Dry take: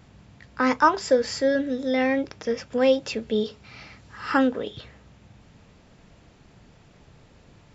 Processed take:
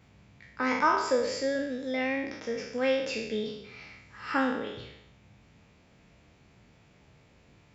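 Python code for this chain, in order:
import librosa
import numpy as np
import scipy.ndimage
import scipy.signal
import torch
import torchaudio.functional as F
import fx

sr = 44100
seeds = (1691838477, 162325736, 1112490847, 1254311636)

y = fx.spec_trails(x, sr, decay_s=0.82)
y = scipy.signal.sosfilt(scipy.signal.butter(2, 43.0, 'highpass', fs=sr, output='sos'), y)
y = fx.peak_eq(y, sr, hz=2300.0, db=6.0, octaves=0.4)
y = F.gain(torch.from_numpy(y), -8.5).numpy()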